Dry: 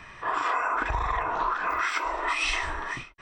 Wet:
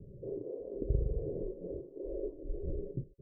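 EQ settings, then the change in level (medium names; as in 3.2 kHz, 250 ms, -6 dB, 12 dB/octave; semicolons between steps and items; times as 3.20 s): rippled Chebyshev low-pass 570 Hz, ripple 9 dB; +8.0 dB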